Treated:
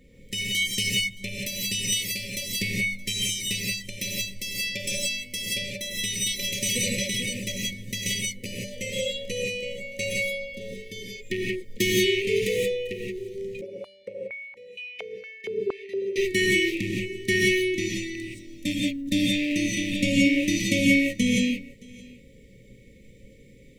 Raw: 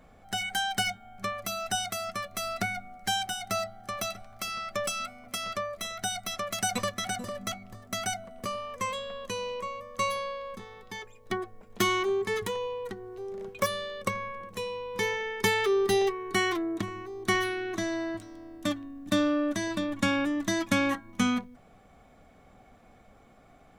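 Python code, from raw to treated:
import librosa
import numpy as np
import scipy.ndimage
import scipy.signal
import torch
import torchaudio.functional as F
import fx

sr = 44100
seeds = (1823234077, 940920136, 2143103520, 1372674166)

y = fx.rattle_buzz(x, sr, strikes_db=-38.0, level_db=-25.0)
y = fx.brickwall_bandstop(y, sr, low_hz=570.0, high_hz=1800.0)
y = y + 10.0 ** (-23.5 / 20.0) * np.pad(y, (int(620 * sr / 1000.0), 0))[:len(y)]
y = fx.rev_gated(y, sr, seeds[0], gate_ms=200, shape='rising', drr_db=-3.5)
y = fx.filter_held_bandpass(y, sr, hz=4.3, low_hz=380.0, high_hz=2600.0, at=(13.61, 16.16))
y = y * 10.0 ** (2.0 / 20.0)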